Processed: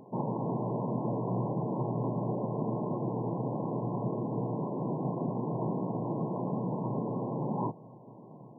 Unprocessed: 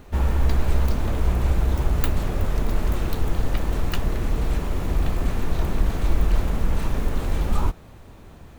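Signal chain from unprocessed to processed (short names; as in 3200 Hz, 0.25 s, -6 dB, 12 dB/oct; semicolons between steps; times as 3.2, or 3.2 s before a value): FFT band-pass 110–1100 Hz; gain -1 dB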